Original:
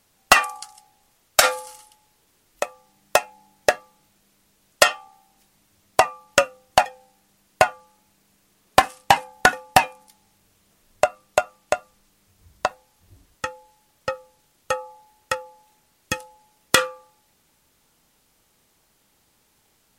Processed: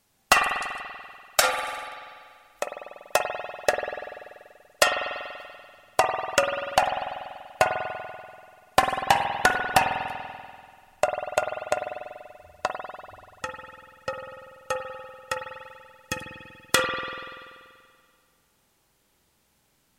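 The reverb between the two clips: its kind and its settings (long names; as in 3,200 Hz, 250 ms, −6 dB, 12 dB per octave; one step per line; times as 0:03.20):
spring reverb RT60 2 s, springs 48 ms, chirp 70 ms, DRR 3 dB
level −5 dB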